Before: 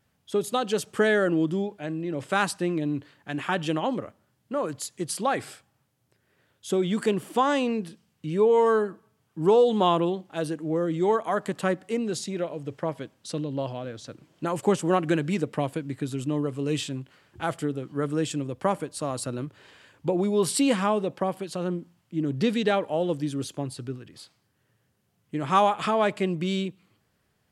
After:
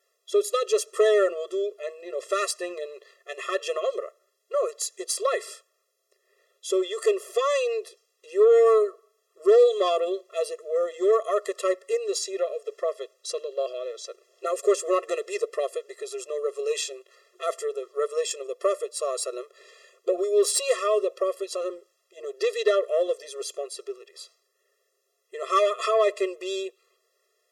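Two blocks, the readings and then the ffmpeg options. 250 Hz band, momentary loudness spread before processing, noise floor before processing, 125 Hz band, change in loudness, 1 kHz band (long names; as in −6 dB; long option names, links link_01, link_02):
−11.5 dB, 12 LU, −71 dBFS, below −40 dB, +1.0 dB, −3.5 dB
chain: -af "equalizer=frequency=1000:width_type=o:width=0.67:gain=-3,equalizer=frequency=2500:width_type=o:width=0.67:gain=-3,equalizer=frequency=6300:width_type=o:width=0.67:gain=6,aeval=exprs='0.447*(cos(1*acos(clip(val(0)/0.447,-1,1)))-cos(1*PI/2))+0.158*(cos(2*acos(clip(val(0)/0.447,-1,1)))-cos(2*PI/2))+0.0708*(cos(5*acos(clip(val(0)/0.447,-1,1)))-cos(5*PI/2))+0.00251*(cos(6*acos(clip(val(0)/0.447,-1,1)))-cos(6*PI/2))':channel_layout=same,afftfilt=real='re*eq(mod(floor(b*sr/1024/350),2),1)':imag='im*eq(mod(floor(b*sr/1024/350),2),1)':win_size=1024:overlap=0.75"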